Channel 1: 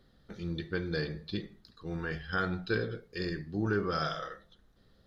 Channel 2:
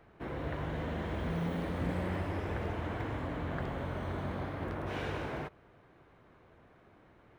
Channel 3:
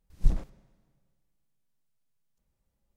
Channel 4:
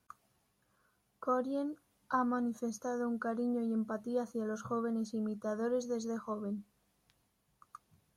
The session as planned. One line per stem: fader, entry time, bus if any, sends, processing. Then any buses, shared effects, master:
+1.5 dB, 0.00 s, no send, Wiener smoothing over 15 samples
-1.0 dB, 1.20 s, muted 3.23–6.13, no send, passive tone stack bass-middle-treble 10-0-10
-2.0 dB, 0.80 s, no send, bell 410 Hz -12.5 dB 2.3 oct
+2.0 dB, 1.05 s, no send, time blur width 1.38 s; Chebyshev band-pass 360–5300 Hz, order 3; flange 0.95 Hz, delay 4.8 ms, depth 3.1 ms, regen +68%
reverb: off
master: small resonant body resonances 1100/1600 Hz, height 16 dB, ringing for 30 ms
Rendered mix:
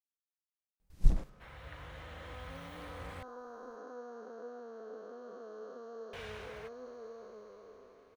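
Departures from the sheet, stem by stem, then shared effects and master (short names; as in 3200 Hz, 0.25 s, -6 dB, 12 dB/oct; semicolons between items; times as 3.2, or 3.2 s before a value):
stem 1: muted; stem 3: missing bell 410 Hz -12.5 dB 2.3 oct; master: missing small resonant body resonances 1100/1600 Hz, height 16 dB, ringing for 30 ms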